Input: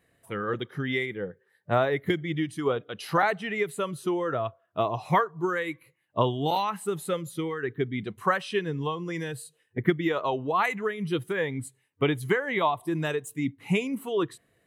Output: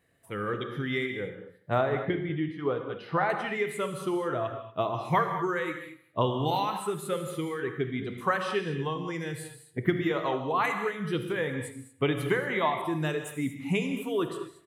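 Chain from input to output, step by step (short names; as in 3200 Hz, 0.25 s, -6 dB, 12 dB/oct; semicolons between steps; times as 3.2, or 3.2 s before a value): 1.81–3.3 air absorption 330 m; feedback echo 78 ms, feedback 56%, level -18.5 dB; non-linear reverb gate 0.26 s flat, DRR 6 dB; gain -2.5 dB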